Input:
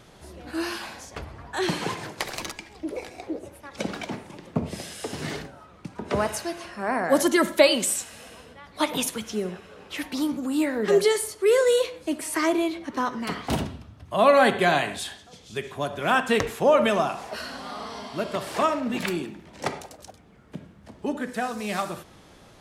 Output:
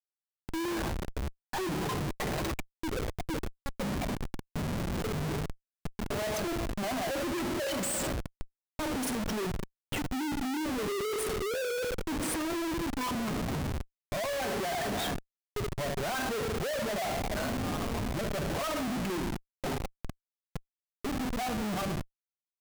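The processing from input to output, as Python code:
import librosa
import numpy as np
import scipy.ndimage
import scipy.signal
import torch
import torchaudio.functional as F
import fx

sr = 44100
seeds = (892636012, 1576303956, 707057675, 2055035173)

y = fx.spec_expand(x, sr, power=2.1)
y = fx.rev_double_slope(y, sr, seeds[0], early_s=0.83, late_s=3.1, knee_db=-18, drr_db=6.5)
y = fx.schmitt(y, sr, flips_db=-33.0)
y = y * 10.0 ** (-6.0 / 20.0)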